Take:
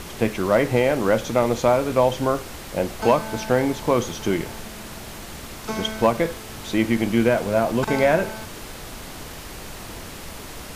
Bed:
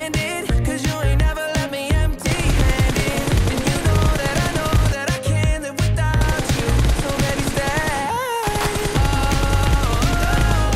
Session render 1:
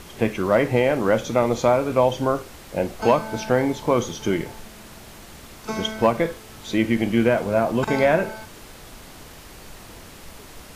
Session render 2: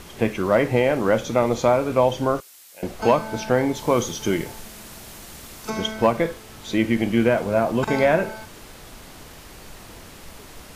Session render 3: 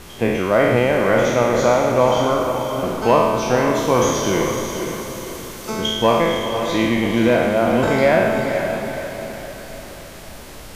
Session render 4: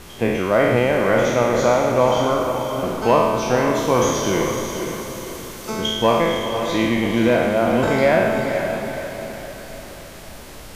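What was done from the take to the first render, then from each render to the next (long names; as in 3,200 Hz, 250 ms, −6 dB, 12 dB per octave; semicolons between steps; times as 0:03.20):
noise reduction from a noise print 6 dB
0:02.40–0:02.83: first difference; 0:03.75–0:05.70: high-shelf EQ 5,100 Hz +7.5 dB
peak hold with a decay on every bin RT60 1.39 s; on a send: feedback delay with all-pass diffusion 497 ms, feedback 46%, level −6.5 dB
level −1 dB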